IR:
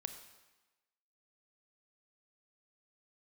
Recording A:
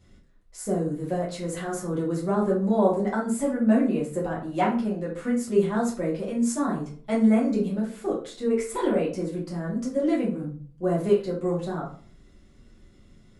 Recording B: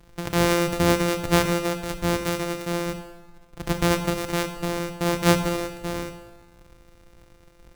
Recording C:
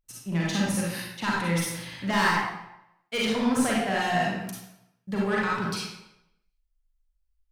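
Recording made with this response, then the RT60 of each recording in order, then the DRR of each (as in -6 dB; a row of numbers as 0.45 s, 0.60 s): B; 0.45 s, 1.1 s, 0.85 s; -5.5 dB, 7.5 dB, -5.5 dB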